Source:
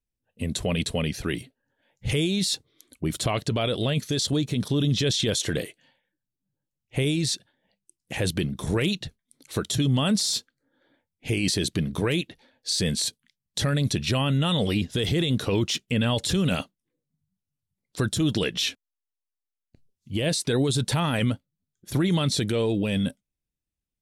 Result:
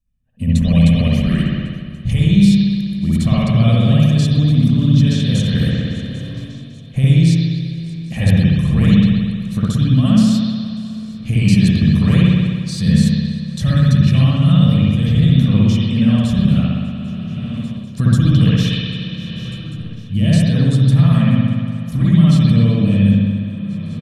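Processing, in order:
low shelf with overshoot 300 Hz +9.5 dB, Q 3
comb filter 1.7 ms, depth 51%
on a send: feedback echo with a long and a short gap by turns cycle 793 ms, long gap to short 3 to 1, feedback 61%, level −23 dB
on the sum: spring reverb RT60 1.8 s, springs 60 ms, chirp 75 ms, DRR −8 dB
automatic gain control
level −1 dB

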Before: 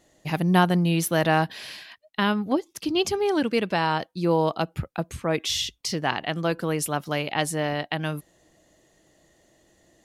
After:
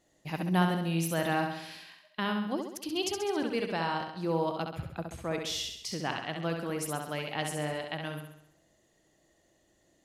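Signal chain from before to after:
0:02.47–0:03.37: bass and treble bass −6 dB, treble +5 dB
on a send: flutter between parallel walls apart 11.4 metres, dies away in 0.73 s
on the sum: level −9 dB

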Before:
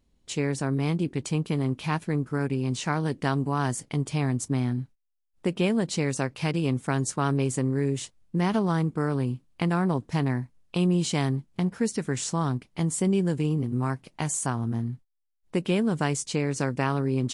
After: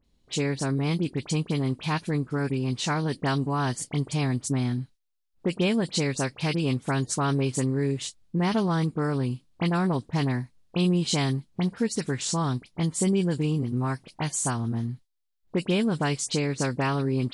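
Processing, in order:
parametric band 4,100 Hz +6 dB 0.9 octaves
all-pass dispersion highs, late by 48 ms, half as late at 2,900 Hz

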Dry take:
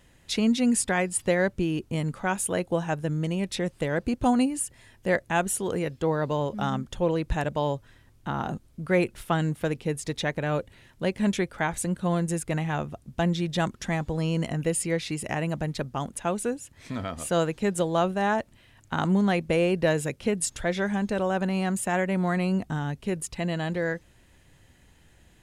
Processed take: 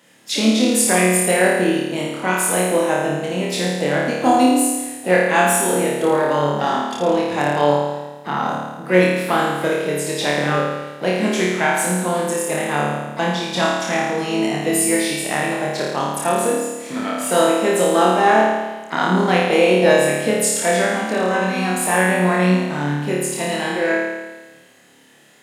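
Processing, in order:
Bessel high-pass filter 250 Hz, order 6
pitch-shifted copies added +5 semitones −12 dB
flutter between parallel walls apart 4.7 metres, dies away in 1.2 s
level +5.5 dB

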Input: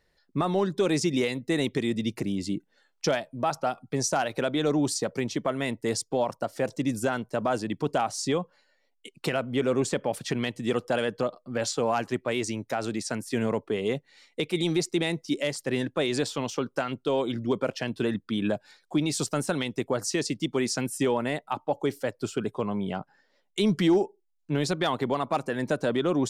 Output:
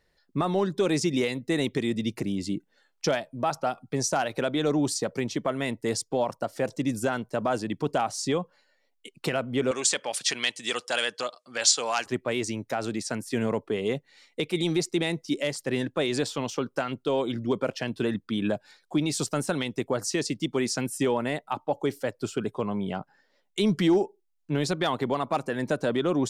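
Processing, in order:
0:09.71–0:12.06: meter weighting curve ITU-R 468

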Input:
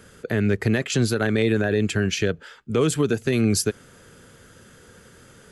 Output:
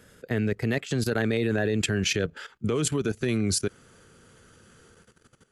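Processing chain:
source passing by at 0:02.14, 15 m/s, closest 14 metres
output level in coarse steps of 15 dB
level +5 dB

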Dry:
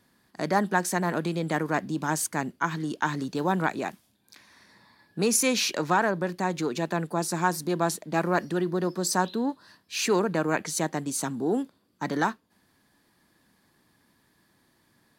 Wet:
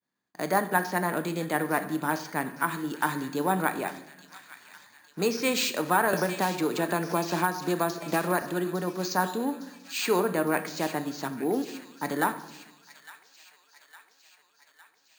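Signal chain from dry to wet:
high-pass filter 260 Hz 6 dB per octave
downward expander −55 dBFS
delay with a high-pass on its return 858 ms, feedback 62%, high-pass 2,200 Hz, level −11 dB
rectangular room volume 320 cubic metres, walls mixed, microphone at 0.41 metres
bad sample-rate conversion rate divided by 4×, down filtered, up hold
0:06.13–0:08.42: multiband upward and downward compressor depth 100%

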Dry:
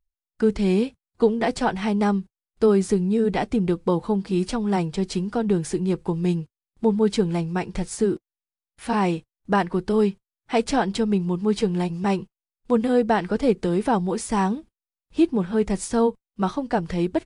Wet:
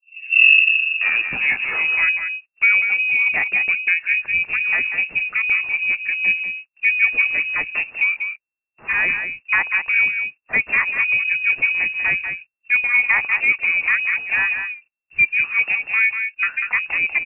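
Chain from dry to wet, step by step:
turntable start at the beginning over 2.40 s
slap from a distant wall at 33 metres, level −7 dB
voice inversion scrambler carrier 2,700 Hz
level +2 dB

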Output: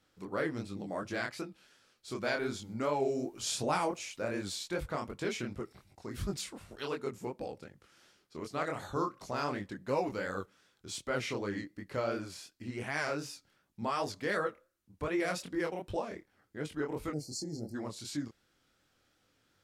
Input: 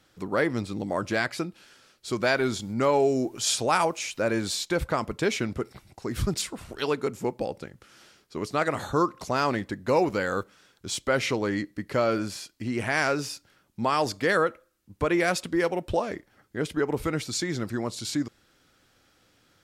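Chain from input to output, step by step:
0:03.40–0:04.02: low-shelf EQ 390 Hz +8 dB
chorus effect 2.7 Hz, delay 20 ms, depth 7.5 ms
0:17.13–0:17.75: gain on a spectral selection 870–4,100 Hz −27 dB
level −6.5 dB

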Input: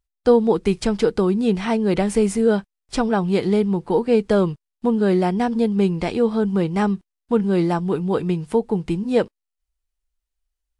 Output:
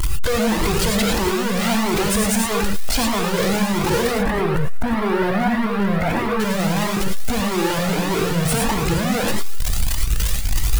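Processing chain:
sign of each sample alone
0:04.11–0:06.40: high shelf with overshoot 2,600 Hz −12 dB, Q 1.5
leveller curve on the samples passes 1
reverb whose tail is shaped and stops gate 130 ms rising, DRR 1.5 dB
flanger whose copies keep moving one way rising 1.6 Hz
level +2 dB

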